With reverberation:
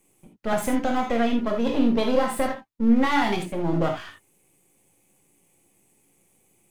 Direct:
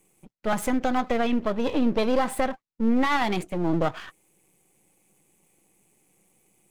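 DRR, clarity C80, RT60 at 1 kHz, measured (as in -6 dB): 1.5 dB, 13.0 dB, no reading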